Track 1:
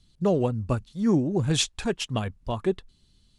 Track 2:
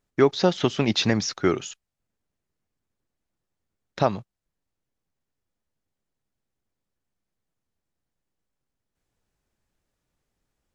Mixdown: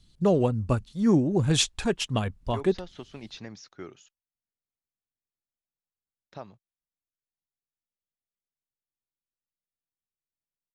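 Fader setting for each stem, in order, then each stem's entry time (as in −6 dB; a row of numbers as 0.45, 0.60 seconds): +1.0, −20.0 decibels; 0.00, 2.35 seconds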